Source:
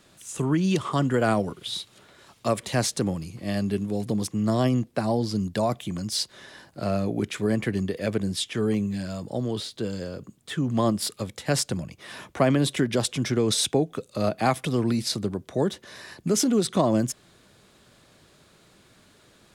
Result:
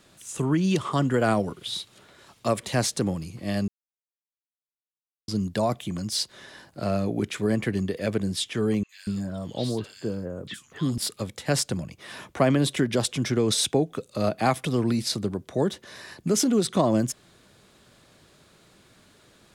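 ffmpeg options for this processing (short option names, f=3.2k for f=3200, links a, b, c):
-filter_complex "[0:a]asettb=1/sr,asplit=3[a][b][c];[a]atrim=end=8.834[d];[b]atrim=start=8.83:end=10.98,asetpts=PTS-STARTPTS,afade=t=in:d=0.004:c=qsin,afade=t=out:st=2.146:d=0.004:c=qsin,acrossover=split=1600|5000[e][f][g];[g]adelay=60[h];[e]adelay=240[i];[i][f][h]amix=inputs=3:normalize=0,atrim=end_sample=94815[j];[c]atrim=start=10.976[k];[d][j]acrossfade=d=0.004:c1=hsin:c2=qsin[l];[l][k]acrossfade=d=0.004:c1=qsin:c2=hsin,asplit=3[m][n][o];[m]atrim=end=3.68,asetpts=PTS-STARTPTS,afade=t=out:st=3.676:d=0.004:c=hsin[p];[n]atrim=start=3.68:end=5.28,asetpts=PTS-STARTPTS,volume=0[q];[o]atrim=start=5.28,asetpts=PTS-STARTPTS,afade=t=in:d=0.004:c=hsin[r];[p][q][r]concat=n=3:v=0:a=1"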